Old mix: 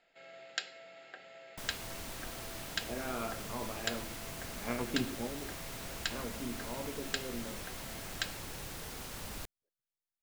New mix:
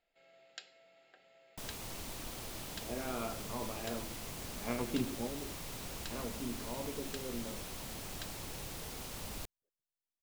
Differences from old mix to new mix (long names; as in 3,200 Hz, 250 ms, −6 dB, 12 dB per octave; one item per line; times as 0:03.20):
first sound −10.5 dB
master: add parametric band 1,600 Hz −4.5 dB 0.76 octaves